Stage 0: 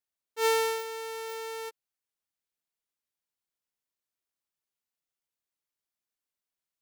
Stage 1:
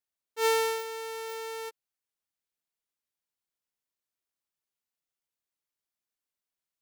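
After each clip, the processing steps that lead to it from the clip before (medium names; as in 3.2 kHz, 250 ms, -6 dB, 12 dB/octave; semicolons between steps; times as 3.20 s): no audible change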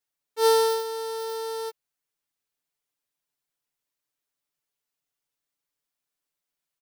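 comb 6.9 ms, depth 96%; trim +1.5 dB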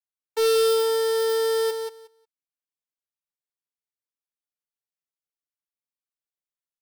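waveshaping leveller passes 5; feedback delay 181 ms, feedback 15%, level -7 dB; trim -5.5 dB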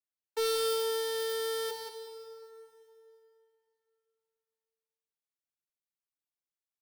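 plate-style reverb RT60 2.9 s, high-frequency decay 0.85×, DRR 7.5 dB; trim -6.5 dB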